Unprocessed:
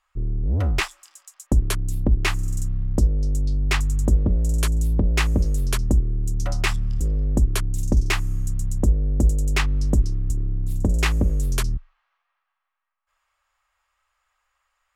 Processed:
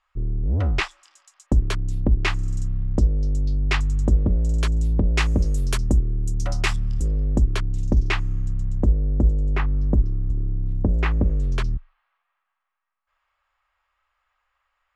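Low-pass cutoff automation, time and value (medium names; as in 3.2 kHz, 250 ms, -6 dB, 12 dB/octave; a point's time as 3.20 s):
4.76 s 4.9 kHz
5.53 s 9.1 kHz
6.94 s 9.1 kHz
7.71 s 3.7 kHz
8.21 s 3.7 kHz
9.59 s 1.5 kHz
10.79 s 1.5 kHz
11.75 s 3.6 kHz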